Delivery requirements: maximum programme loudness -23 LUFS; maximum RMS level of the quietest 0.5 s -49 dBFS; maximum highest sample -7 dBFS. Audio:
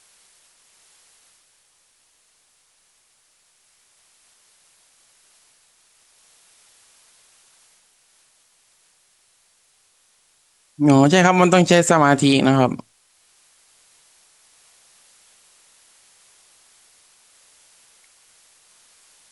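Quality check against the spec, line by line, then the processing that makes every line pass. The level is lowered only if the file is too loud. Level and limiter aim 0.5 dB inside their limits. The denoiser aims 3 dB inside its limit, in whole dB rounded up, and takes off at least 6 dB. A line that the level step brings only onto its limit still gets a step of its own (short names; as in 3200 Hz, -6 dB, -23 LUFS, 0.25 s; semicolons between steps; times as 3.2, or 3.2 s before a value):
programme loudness -15.5 LUFS: fail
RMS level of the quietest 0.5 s -61 dBFS: OK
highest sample -2.5 dBFS: fail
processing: gain -8 dB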